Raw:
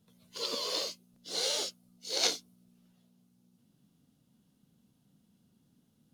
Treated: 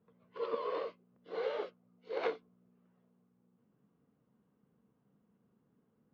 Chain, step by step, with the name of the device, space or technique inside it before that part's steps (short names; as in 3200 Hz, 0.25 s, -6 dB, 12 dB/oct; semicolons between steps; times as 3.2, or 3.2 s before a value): bass cabinet (speaker cabinet 69–2100 Hz, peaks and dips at 96 Hz -8 dB, 160 Hz -5 dB, 260 Hz -4 dB, 450 Hz +9 dB, 1100 Hz +7 dB); gain -2 dB